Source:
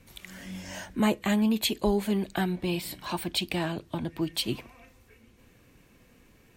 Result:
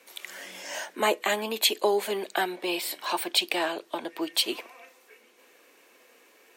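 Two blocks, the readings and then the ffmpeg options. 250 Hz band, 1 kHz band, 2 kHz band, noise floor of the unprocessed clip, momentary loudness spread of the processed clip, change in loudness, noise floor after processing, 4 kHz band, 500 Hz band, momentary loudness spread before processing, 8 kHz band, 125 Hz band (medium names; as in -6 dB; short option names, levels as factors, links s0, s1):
-9.0 dB, +5.5 dB, +5.5 dB, -60 dBFS, 14 LU, +1.5 dB, -59 dBFS, +5.5 dB, +3.5 dB, 14 LU, +5.5 dB, -19.5 dB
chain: -af "highpass=f=390:w=0.5412,highpass=f=390:w=1.3066,volume=1.88"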